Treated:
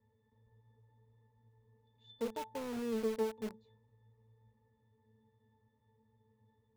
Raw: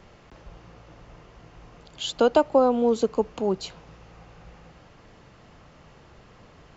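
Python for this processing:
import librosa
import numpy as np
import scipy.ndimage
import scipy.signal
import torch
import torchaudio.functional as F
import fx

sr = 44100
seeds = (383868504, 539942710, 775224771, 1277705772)

p1 = fx.octave_resonator(x, sr, note='A', decay_s=0.33)
p2 = fx.quant_companded(p1, sr, bits=2)
p3 = p1 + (p2 * librosa.db_to_amplitude(-8.0))
y = p3 * librosa.db_to_amplitude(-7.0)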